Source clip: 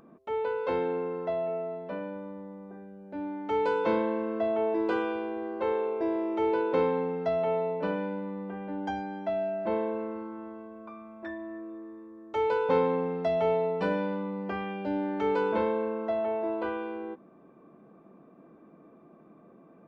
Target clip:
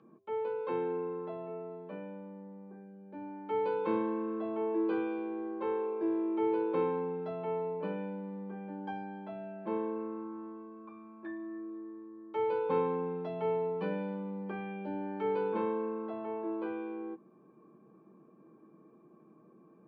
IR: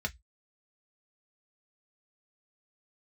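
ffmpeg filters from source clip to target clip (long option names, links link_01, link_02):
-filter_complex "[0:a]highpass=190,lowpass=2700[link_01];[1:a]atrim=start_sample=2205,asetrate=74970,aresample=44100[link_02];[link_01][link_02]afir=irnorm=-1:irlink=0,volume=-5.5dB"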